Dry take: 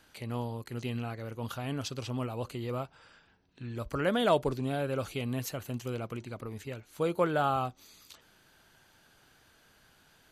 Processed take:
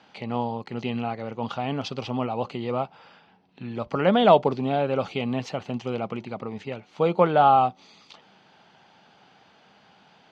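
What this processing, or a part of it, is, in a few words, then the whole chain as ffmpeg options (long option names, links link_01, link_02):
kitchen radio: -af "highpass=170,equalizer=frequency=190:width_type=q:width=4:gain=7,equalizer=frequency=320:width_type=q:width=4:gain=-4,equalizer=frequency=800:width_type=q:width=4:gain=8,equalizer=frequency=1600:width_type=q:width=4:gain=-7,equalizer=frequency=4000:width_type=q:width=4:gain=-4,lowpass=frequency=4600:width=0.5412,lowpass=frequency=4600:width=1.3066,volume=8dB"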